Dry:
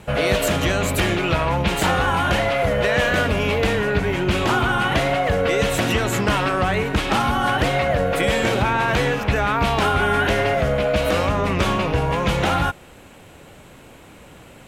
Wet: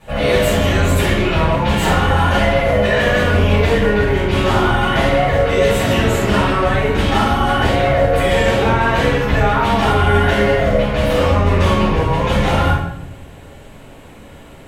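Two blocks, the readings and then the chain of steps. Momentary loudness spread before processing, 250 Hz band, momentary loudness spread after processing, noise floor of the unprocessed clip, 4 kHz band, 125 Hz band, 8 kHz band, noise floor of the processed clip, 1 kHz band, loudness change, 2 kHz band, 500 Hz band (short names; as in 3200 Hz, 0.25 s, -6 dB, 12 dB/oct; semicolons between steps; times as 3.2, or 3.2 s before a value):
2 LU, +5.5 dB, 2 LU, -45 dBFS, +3.0 dB, +6.5 dB, +0.5 dB, -39 dBFS, +4.0 dB, +4.5 dB, +3.0 dB, +5.5 dB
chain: shoebox room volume 270 m³, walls mixed, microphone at 6 m; gain -11.5 dB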